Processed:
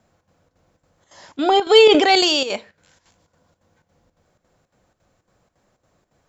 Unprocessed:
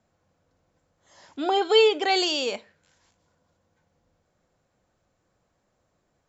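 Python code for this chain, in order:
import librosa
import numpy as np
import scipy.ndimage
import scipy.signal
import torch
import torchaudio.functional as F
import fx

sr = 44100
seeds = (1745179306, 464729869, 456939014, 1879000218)

p1 = fx.chopper(x, sr, hz=3.6, depth_pct=65, duty_pct=75)
p2 = 10.0 ** (-16.5 / 20.0) * np.tanh(p1 / 10.0 ** (-16.5 / 20.0))
p3 = p1 + F.gain(torch.from_numpy(p2), -5.5).numpy()
p4 = fx.sustainer(p3, sr, db_per_s=39.0, at=(1.81, 2.33))
y = F.gain(torch.from_numpy(p4), 4.5).numpy()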